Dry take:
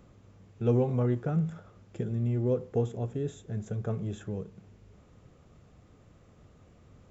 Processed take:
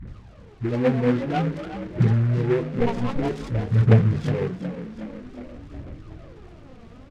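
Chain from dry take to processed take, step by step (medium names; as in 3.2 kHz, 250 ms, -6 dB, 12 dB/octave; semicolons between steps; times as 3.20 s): 2.80–3.22 s: comb filter that takes the minimum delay 0.91 ms; steep low-pass 4 kHz; bass shelf 130 Hz +4.5 dB; hum notches 50/100/150/200/250 Hz; peak limiter -24.5 dBFS, peak gain reduction 10.5 dB; phase dispersion highs, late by 76 ms, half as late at 390 Hz; phaser 0.51 Hz, delay 4.5 ms, feedback 72%; frequency-shifting echo 365 ms, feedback 59%, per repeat +34 Hz, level -12 dB; delay time shaken by noise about 1.4 kHz, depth 0.061 ms; trim +8.5 dB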